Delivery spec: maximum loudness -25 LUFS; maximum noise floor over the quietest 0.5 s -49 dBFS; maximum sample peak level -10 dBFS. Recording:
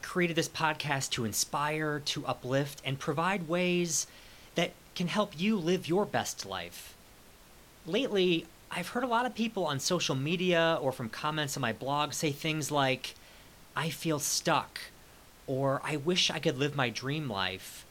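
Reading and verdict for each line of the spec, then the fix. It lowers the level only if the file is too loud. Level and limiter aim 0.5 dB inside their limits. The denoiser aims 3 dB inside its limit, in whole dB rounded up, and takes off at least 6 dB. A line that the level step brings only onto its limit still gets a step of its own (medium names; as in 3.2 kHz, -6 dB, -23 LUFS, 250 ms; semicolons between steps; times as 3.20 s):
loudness -31.0 LUFS: pass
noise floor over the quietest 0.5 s -56 dBFS: pass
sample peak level -13.0 dBFS: pass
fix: none needed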